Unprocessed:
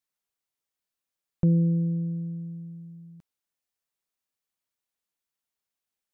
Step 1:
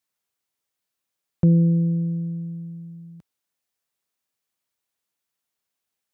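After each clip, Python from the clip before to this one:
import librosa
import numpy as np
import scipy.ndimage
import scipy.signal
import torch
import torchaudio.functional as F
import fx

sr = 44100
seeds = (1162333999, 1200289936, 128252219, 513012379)

y = scipy.signal.sosfilt(scipy.signal.butter(2, 61.0, 'highpass', fs=sr, output='sos'), x)
y = y * 10.0 ** (5.0 / 20.0)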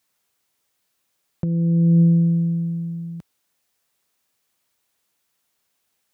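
y = fx.over_compress(x, sr, threshold_db=-23.0, ratio=-1.0)
y = y * 10.0 ** (7.0 / 20.0)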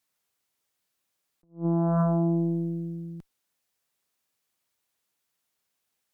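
y = fx.cheby_harmonics(x, sr, harmonics=(5, 6), levels_db=(-26, -8), full_scale_db=-8.5)
y = fx.attack_slew(y, sr, db_per_s=240.0)
y = y * 10.0 ** (-9.0 / 20.0)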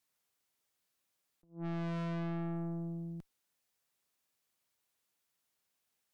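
y = 10.0 ** (-33.0 / 20.0) * np.tanh(x / 10.0 ** (-33.0 / 20.0))
y = y * 10.0 ** (-3.0 / 20.0)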